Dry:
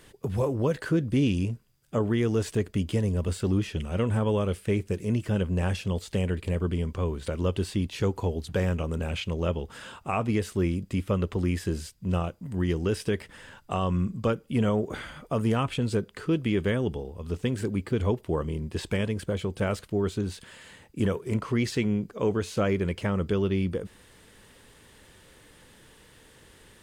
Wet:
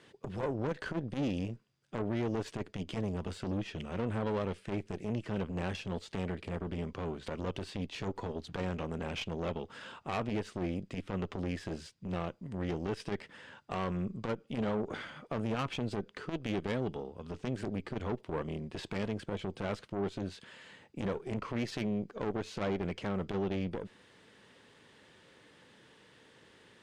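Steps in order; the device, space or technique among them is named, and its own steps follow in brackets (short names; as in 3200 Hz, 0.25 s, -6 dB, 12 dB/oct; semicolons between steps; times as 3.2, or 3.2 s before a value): valve radio (BPF 140–5100 Hz; tube stage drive 27 dB, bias 0.7; core saturation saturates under 240 Hz)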